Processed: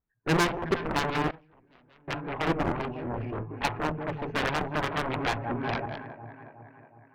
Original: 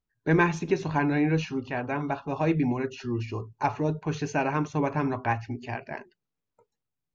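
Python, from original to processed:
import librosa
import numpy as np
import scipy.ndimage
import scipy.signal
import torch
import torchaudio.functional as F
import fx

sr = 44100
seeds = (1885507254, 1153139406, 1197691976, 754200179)

p1 = scipy.signal.sosfilt(scipy.signal.butter(4, 2000.0, 'lowpass', fs=sr, output='sos'), x)
p2 = p1 + fx.echo_alternate(p1, sr, ms=183, hz=900.0, feedback_pct=73, wet_db=-9.0, dry=0)
p3 = fx.cheby_harmonics(p2, sr, harmonics=(3, 5, 7, 8), levels_db=(-14, -20, -13, -24), full_scale_db=-11.0)
p4 = fx.gate_flip(p3, sr, shuts_db=-32.0, range_db=-27, at=(1.3, 2.08))
p5 = 10.0 ** (-26.0 / 20.0) * (np.abs((p4 / 10.0 ** (-26.0 / 20.0) + 3.0) % 4.0 - 2.0) - 1.0)
p6 = p4 + (p5 * librosa.db_to_amplitude(-4.5))
y = fx.band_squash(p6, sr, depth_pct=100, at=(4.43, 5.86))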